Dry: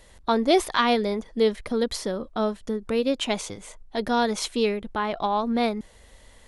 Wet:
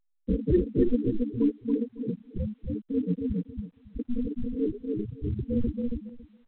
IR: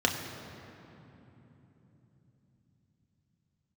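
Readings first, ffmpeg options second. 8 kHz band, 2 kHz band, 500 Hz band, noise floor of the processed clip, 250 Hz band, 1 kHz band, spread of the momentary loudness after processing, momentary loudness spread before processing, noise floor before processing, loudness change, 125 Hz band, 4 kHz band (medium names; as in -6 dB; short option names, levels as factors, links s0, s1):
under -40 dB, under -25 dB, -8.0 dB, -72 dBFS, 0.0 dB, under -35 dB, 11 LU, 10 LU, -52 dBFS, -4.5 dB, +8.5 dB, under -30 dB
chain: -af "aresample=16000,acrusher=samples=22:mix=1:aa=0.000001,aresample=44100,lowpass=f=1700:w=0.5412,lowpass=f=1700:w=1.3066,flanger=delay=15:depth=2.1:speed=2.4,equalizer=f=1100:w=6.4:g=-14.5,afftfilt=real='re*gte(hypot(re,im),0.2)':imag='im*gte(hypot(re,im),0.2)':win_size=1024:overlap=0.75,areverse,acompressor=mode=upward:threshold=0.0126:ratio=2.5,areverse,aecho=1:1:277|554|831:0.668|0.107|0.0171" -ar 8000 -c:a pcm_alaw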